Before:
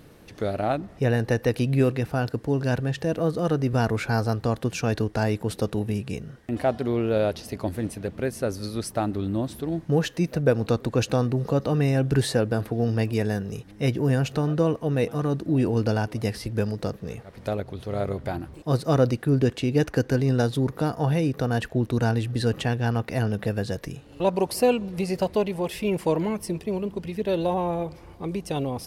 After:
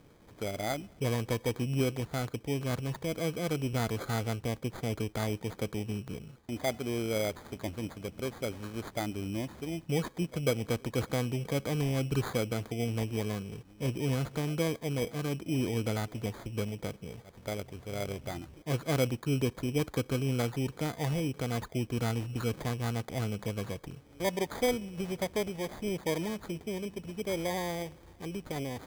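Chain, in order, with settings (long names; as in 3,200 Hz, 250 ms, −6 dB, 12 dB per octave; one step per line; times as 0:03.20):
0:04.44–0:04.99: parametric band 1,500 Hz −12 dB 0.75 octaves
decimation without filtering 16×
level −8.5 dB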